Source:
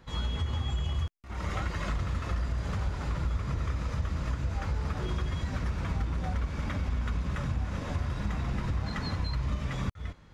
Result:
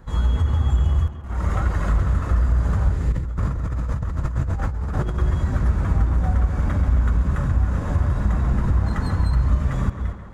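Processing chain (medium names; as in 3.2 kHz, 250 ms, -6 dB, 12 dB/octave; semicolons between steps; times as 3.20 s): tracing distortion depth 0.022 ms; high-order bell 3.5 kHz -9.5 dB; 2.92–3.25 s: time-frequency box 540–1700 Hz -10 dB; bass shelf 94 Hz +8.5 dB; tape echo 135 ms, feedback 76%, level -7.5 dB, low-pass 3.7 kHz; 3.12–5.18 s: compressor with a negative ratio -30 dBFS, ratio -1; trim +6.5 dB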